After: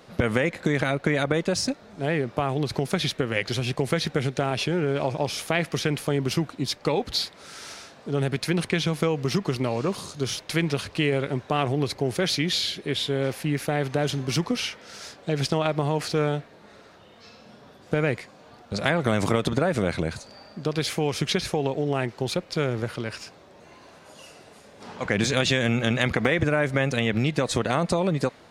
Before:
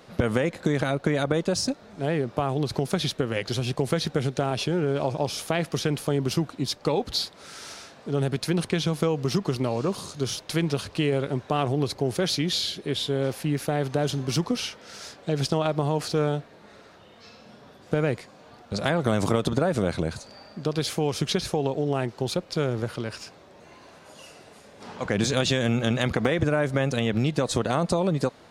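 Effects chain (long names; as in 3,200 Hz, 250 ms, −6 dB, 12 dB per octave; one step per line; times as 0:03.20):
dynamic equaliser 2,100 Hz, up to +7 dB, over −47 dBFS, Q 1.7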